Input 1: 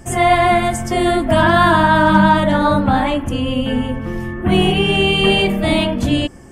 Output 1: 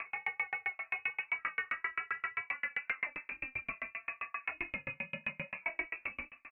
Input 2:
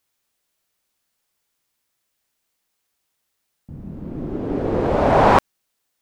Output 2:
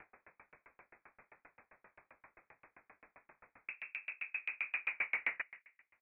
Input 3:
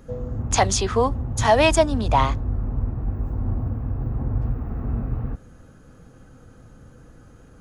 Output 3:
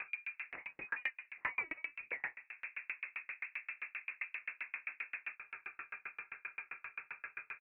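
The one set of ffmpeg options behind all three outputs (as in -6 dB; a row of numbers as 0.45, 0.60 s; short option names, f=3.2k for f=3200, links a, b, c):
-filter_complex "[0:a]highpass=f=410:w=0.5412,highpass=f=410:w=1.3066,acompressor=mode=upward:threshold=-33dB:ratio=2.5,alimiter=limit=-9.5dB:level=0:latency=1:release=318,acompressor=threshold=-41dB:ratio=2,flanger=delay=19.5:depth=7:speed=1,asoftclip=type=tanh:threshold=-35dB,asplit=2[a][b];[b]adelay=201,lowpass=f=1.9k:p=1,volume=-18dB,asplit=2[c][d];[d]adelay=201,lowpass=f=1.9k:p=1,volume=0.37,asplit=2[e][f];[f]adelay=201,lowpass=f=1.9k:p=1,volume=0.37[g];[a][c][e][g]amix=inputs=4:normalize=0,lowpass=f=2.5k:t=q:w=0.5098,lowpass=f=2.5k:t=q:w=0.6013,lowpass=f=2.5k:t=q:w=0.9,lowpass=f=2.5k:t=q:w=2.563,afreqshift=-2900,aeval=exprs='val(0)*pow(10,-39*if(lt(mod(7.6*n/s,1),2*abs(7.6)/1000),1-mod(7.6*n/s,1)/(2*abs(7.6)/1000),(mod(7.6*n/s,1)-2*abs(7.6)/1000)/(1-2*abs(7.6)/1000))/20)':c=same,volume=10dB"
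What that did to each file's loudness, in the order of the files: -23.0, -21.0, -20.5 LU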